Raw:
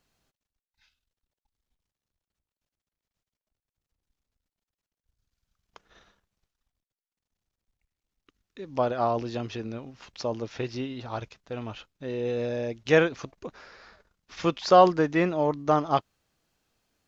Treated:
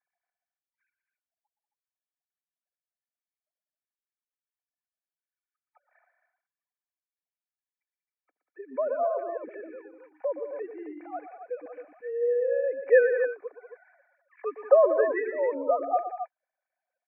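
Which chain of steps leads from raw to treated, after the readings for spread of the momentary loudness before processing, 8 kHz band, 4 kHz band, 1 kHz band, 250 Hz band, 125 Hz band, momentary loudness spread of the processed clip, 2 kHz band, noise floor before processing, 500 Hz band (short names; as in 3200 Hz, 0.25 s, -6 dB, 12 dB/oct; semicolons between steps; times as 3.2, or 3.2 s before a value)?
20 LU, n/a, under -40 dB, -6.5 dB, -12.5 dB, under -40 dB, 20 LU, -1.5 dB, under -85 dBFS, +2.0 dB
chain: sine-wave speech; rippled Chebyshev low-pass 2400 Hz, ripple 9 dB; comb 4 ms, depth 37%; loudspeakers at several distances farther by 41 m -11 dB, 65 m -12 dB, 92 m -9 dB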